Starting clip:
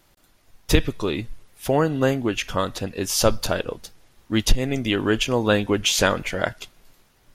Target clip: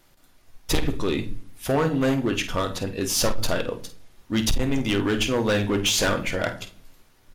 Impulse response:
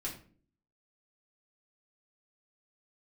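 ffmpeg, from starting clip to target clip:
-filter_complex "[0:a]asplit=2[a][b];[1:a]atrim=start_sample=2205,asetrate=38367,aresample=44100[c];[b][c]afir=irnorm=-1:irlink=0,volume=-8dB[d];[a][d]amix=inputs=2:normalize=0,asoftclip=type=hard:threshold=-14.5dB,asplit=2[e][f];[f]adelay=50,volume=-12dB[g];[e][g]amix=inputs=2:normalize=0,volume=-2.5dB"

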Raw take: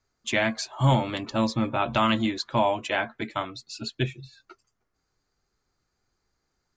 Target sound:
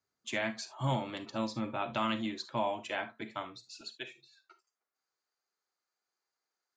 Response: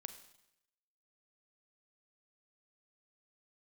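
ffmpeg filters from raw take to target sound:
-filter_complex "[0:a]asetnsamples=n=441:p=0,asendcmd='3.81 highpass f 560',highpass=120[a];[1:a]atrim=start_sample=2205,atrim=end_sample=3528[b];[a][b]afir=irnorm=-1:irlink=0,volume=-5dB"

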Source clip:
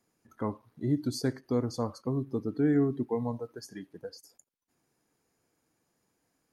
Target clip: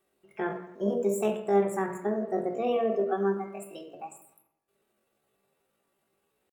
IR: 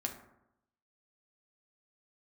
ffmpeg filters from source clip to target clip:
-filter_complex "[1:a]atrim=start_sample=2205[a];[0:a][a]afir=irnorm=-1:irlink=0,asetrate=72056,aresample=44100,atempo=0.612027"

